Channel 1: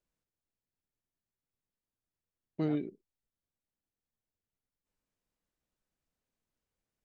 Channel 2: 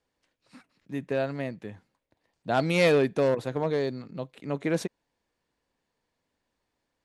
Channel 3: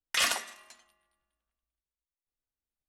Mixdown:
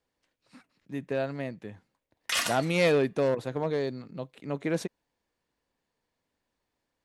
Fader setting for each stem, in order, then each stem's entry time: muted, −2.0 dB, −1.5 dB; muted, 0.00 s, 2.15 s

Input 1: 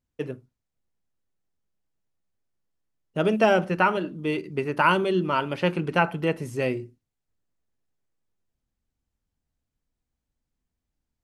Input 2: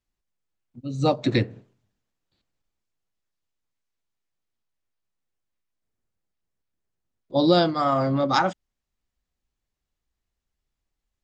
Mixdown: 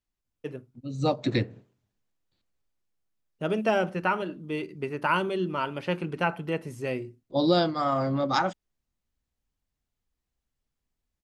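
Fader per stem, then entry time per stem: −5.0, −4.0 decibels; 0.25, 0.00 seconds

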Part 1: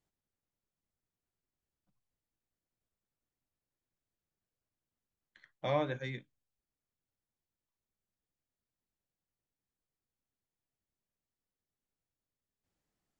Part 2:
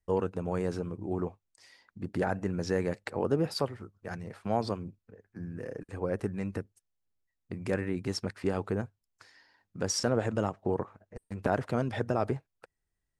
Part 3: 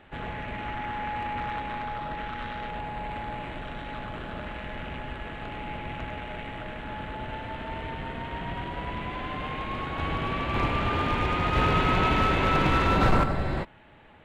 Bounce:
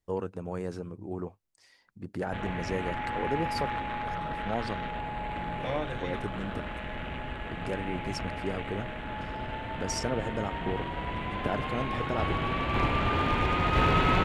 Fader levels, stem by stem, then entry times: −1.0, −3.5, −0.5 decibels; 0.00, 0.00, 2.20 seconds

